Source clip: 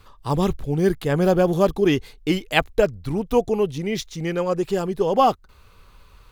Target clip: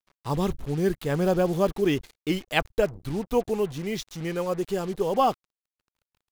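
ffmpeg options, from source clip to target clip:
ffmpeg -i in.wav -af "acrusher=bits=5:mix=0:aa=0.5,volume=-5dB" out.wav

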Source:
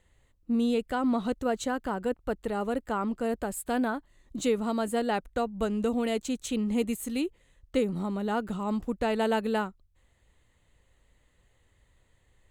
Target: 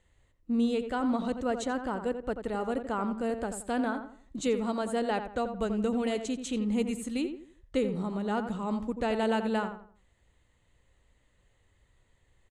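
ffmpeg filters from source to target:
ffmpeg -i in.wav -filter_complex "[0:a]lowpass=frequency=9700:width=0.5412,lowpass=frequency=9700:width=1.3066,asplit=2[link_01][link_02];[link_02]adelay=86,lowpass=frequency=2000:poles=1,volume=-8dB,asplit=2[link_03][link_04];[link_04]adelay=86,lowpass=frequency=2000:poles=1,volume=0.34,asplit=2[link_05][link_06];[link_06]adelay=86,lowpass=frequency=2000:poles=1,volume=0.34,asplit=2[link_07][link_08];[link_08]adelay=86,lowpass=frequency=2000:poles=1,volume=0.34[link_09];[link_01][link_03][link_05][link_07][link_09]amix=inputs=5:normalize=0,volume=-2dB" out.wav

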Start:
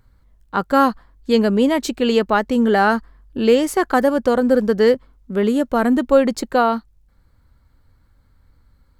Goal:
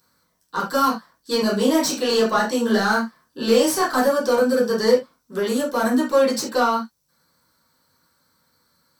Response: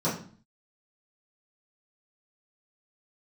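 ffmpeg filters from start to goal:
-filter_complex "[0:a]aderivative,asoftclip=type=tanh:threshold=-32.5dB,asettb=1/sr,asplit=3[link_01][link_02][link_03];[link_01]atrim=end=1.384[link_04];[link_02]atrim=start=1.38:end=4.01,asetpts=PTS-STARTPTS,afade=type=in:duration=0.004:curve=qsin,afade=type=out:start_time=2.626:duration=0.004:curve=qsin,asplit=2[link_05][link_06];[link_06]adelay=31,volume=-5.5dB[link_07];[link_05][link_07]amix=inputs=2:normalize=0,atrim=end_sample=115983[link_08];[link_03]atrim=start=4.006[link_09];[link_04][link_08]acrossfade=duration=0.004:curve1=hsin:curve2=qsin[link_10];[link_10][link_09]acrossfade=duration=0.004:curve1=qsin:curve2=hsin[link_11];[1:a]atrim=start_sample=2205,atrim=end_sample=3969[link_12];[link_11][link_12]afir=irnorm=-1:irlink=0,volume=7dB"

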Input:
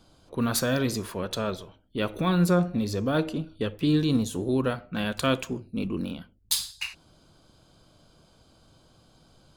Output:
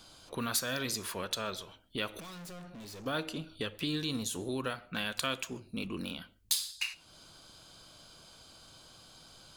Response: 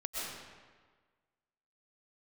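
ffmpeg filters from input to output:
-filter_complex "[0:a]tiltshelf=frequency=920:gain=-7,acompressor=threshold=-42dB:ratio=2,asettb=1/sr,asplit=3[link_01][link_02][link_03];[link_01]atrim=end=2.204[link_04];[link_02]atrim=start=2.2:end=3.06,asetpts=PTS-STARTPTS,afade=type=in:duration=0.004:curve=qsin,afade=type=out:start_time=0.856:duration=0.004:curve=qsin,aeval=exprs='(tanh(251*val(0)+0.15)-tanh(0.15))/251':channel_layout=same[link_05];[link_03]atrim=start=3.056[link_06];[link_04][link_05]acrossfade=duration=0.004:curve1=hsin:curve2=qsin[link_07];[link_07][link_06]acrossfade=duration=0.004:curve1=qsin:curve2=hsin,asplit=2[link_08][link_09];[1:a]atrim=start_sample=2205,afade=type=out:start_time=0.2:duration=0.01,atrim=end_sample=9261[link_10];[link_09][link_10]afir=irnorm=-1:irlink=0,volume=-25dB[link_11];[link_08][link_11]amix=inputs=2:normalize=0,volume=2.5dB"

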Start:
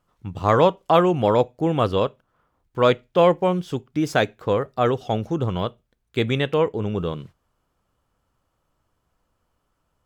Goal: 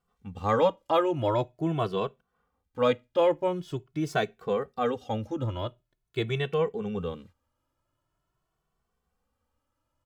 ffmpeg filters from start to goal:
ffmpeg -i in.wav -filter_complex "[0:a]asplit=2[link_01][link_02];[link_02]adelay=2.2,afreqshift=0.45[link_03];[link_01][link_03]amix=inputs=2:normalize=1,volume=-4.5dB" out.wav

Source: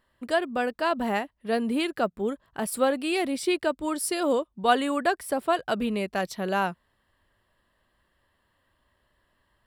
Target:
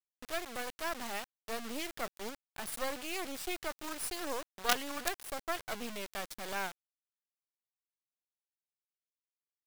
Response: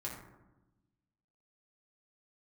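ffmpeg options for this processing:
-af "acrusher=bits=3:dc=4:mix=0:aa=0.000001,tiltshelf=frequency=970:gain=-4,volume=-8dB"

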